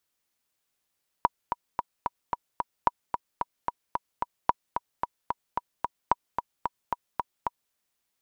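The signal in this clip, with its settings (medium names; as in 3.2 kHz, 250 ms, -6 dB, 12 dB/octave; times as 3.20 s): metronome 222 bpm, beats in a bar 6, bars 4, 964 Hz, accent 7 dB -6.5 dBFS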